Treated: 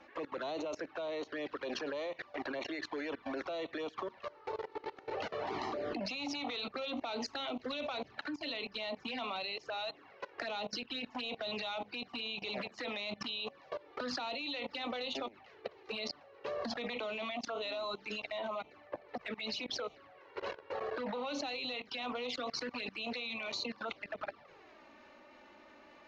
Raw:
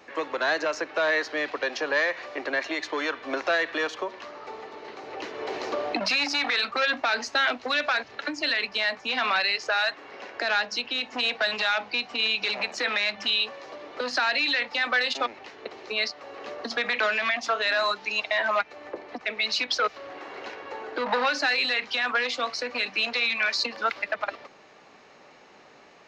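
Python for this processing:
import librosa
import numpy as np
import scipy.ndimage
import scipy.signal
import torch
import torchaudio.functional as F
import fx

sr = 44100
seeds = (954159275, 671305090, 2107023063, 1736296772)

y = scipy.signal.sosfilt(scipy.signal.butter(2, 5700.0, 'lowpass', fs=sr, output='sos'), x)
y = fx.env_flanger(y, sr, rest_ms=3.8, full_db=-23.5)
y = fx.bass_treble(y, sr, bass_db=4, treble_db=-5)
y = fx.level_steps(y, sr, step_db=21)
y = fx.dynamic_eq(y, sr, hz=2200.0, q=1.4, threshold_db=-56.0, ratio=4.0, max_db=-5)
y = F.gain(torch.from_numpy(y), 4.5).numpy()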